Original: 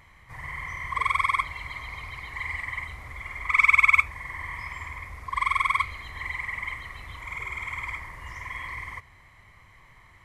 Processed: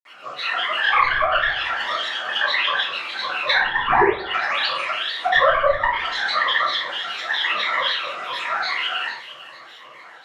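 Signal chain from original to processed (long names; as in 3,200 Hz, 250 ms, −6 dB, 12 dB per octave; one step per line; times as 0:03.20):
Butterworth high-pass 220 Hz 72 dB per octave
sound drawn into the spectrogram rise, 0:03.90–0:04.14, 450–6,700 Hz −19 dBFS
granular cloud, grains 20 per second, pitch spread up and down by 12 semitones
mid-hump overdrive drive 11 dB, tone 4,800 Hz, clips at −6.5 dBFS
delay with a high-pass on its return 448 ms, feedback 32%, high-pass 3,200 Hz, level −10 dB
treble cut that deepens with the level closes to 780 Hz, closed at −16.5 dBFS
rectangular room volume 56 cubic metres, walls mixed, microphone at 2.3 metres
level −2 dB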